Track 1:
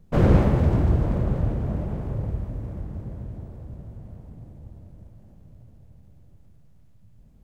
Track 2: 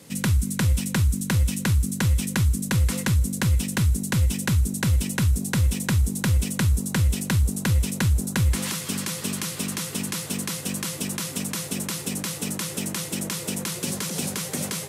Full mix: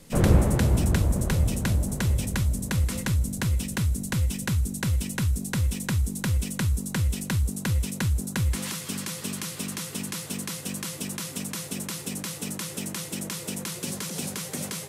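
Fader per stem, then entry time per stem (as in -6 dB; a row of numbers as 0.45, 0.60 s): -3.5, -4.0 dB; 0.00, 0.00 s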